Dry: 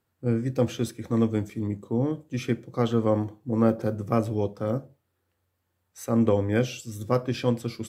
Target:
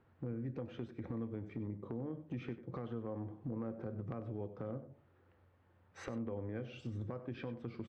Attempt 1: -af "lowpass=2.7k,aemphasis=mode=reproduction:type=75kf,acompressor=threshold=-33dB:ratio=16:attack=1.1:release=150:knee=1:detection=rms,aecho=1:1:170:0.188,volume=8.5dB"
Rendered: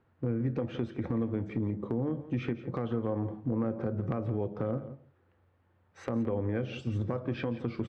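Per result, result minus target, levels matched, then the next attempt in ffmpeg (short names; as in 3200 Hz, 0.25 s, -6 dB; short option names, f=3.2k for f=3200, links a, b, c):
echo 74 ms late; compressor: peak gain reduction -10.5 dB
-af "lowpass=2.7k,aemphasis=mode=reproduction:type=75kf,acompressor=threshold=-33dB:ratio=16:attack=1.1:release=150:knee=1:detection=rms,aecho=1:1:96:0.188,volume=8.5dB"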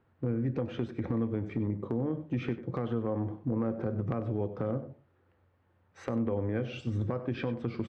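compressor: peak gain reduction -10.5 dB
-af "lowpass=2.7k,aemphasis=mode=reproduction:type=75kf,acompressor=threshold=-44dB:ratio=16:attack=1.1:release=150:knee=1:detection=rms,aecho=1:1:96:0.188,volume=8.5dB"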